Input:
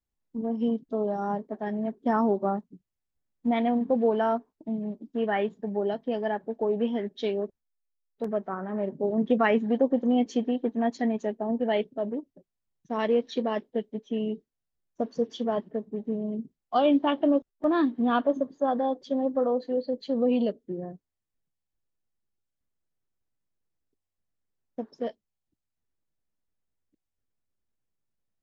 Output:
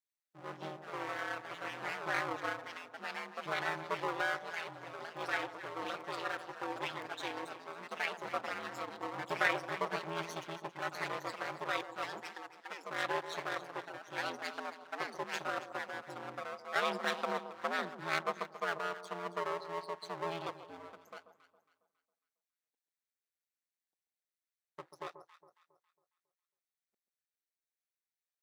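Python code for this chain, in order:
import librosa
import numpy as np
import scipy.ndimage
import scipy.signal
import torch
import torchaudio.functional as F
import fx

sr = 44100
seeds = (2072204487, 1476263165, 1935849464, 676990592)

y = fx.lower_of_two(x, sr, delay_ms=0.5)
y = scipy.signal.sosfilt(scipy.signal.butter(2, 850.0, 'highpass', fs=sr, output='sos'), y)
y = fx.echo_pitch(y, sr, ms=89, semitones=3, count=3, db_per_echo=-6.0)
y = fx.echo_alternate(y, sr, ms=137, hz=1100.0, feedback_pct=59, wet_db=-10)
y = y * np.sin(2.0 * np.pi * 84.0 * np.arange(len(y)) / sr)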